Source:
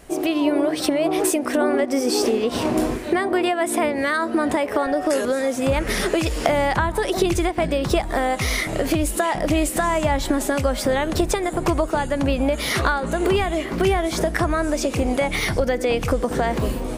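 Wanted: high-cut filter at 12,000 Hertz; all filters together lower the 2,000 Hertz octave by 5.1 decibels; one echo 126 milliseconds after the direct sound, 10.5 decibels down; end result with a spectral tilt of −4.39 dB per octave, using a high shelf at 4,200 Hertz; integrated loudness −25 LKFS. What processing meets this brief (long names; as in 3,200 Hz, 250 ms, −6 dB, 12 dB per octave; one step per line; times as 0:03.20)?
low-pass filter 12,000 Hz
parametric band 2,000 Hz −7.5 dB
high-shelf EQ 4,200 Hz +5 dB
single-tap delay 126 ms −10.5 dB
level −3.5 dB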